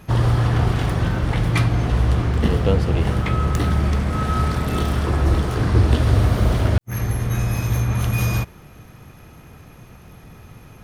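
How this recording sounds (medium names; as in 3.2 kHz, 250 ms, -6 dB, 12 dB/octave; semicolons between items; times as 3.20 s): noise floor -44 dBFS; spectral tilt -7.0 dB/octave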